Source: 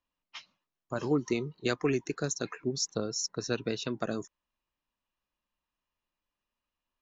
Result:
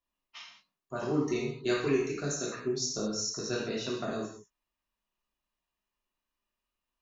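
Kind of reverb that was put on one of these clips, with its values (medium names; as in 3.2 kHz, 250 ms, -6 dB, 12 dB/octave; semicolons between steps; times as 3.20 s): gated-style reverb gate 240 ms falling, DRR -5.5 dB; trim -6.5 dB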